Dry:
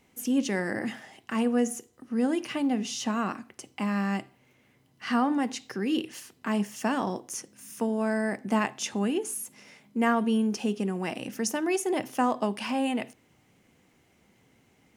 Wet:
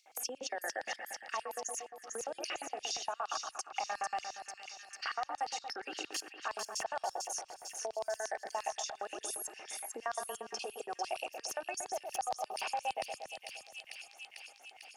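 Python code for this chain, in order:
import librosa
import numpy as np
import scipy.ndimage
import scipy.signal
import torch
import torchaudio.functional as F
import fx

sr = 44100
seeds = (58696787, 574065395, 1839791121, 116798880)

p1 = fx.envelope_sharpen(x, sr, power=1.5)
p2 = scipy.signal.sosfilt(scipy.signal.butter(2, 390.0, 'highpass', fs=sr, output='sos'), p1)
p3 = fx.level_steps(p2, sr, step_db=22)
p4 = fx.notch_comb(p3, sr, f0_hz=1000.0)
p5 = fx.filter_lfo_highpass(p4, sr, shape='square', hz=8.6, low_hz=770.0, high_hz=4700.0, q=4.2)
p6 = p5 + fx.echo_split(p5, sr, split_hz=2300.0, low_ms=117, high_ms=447, feedback_pct=52, wet_db=-7.5, dry=0)
p7 = fx.band_squash(p6, sr, depth_pct=70)
y = F.gain(torch.from_numpy(p7), 4.5).numpy()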